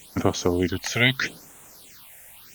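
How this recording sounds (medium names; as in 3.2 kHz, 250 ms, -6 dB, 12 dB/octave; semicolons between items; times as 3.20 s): a quantiser's noise floor 8-bit, dither triangular; phasing stages 6, 0.79 Hz, lowest notch 290–4700 Hz; Opus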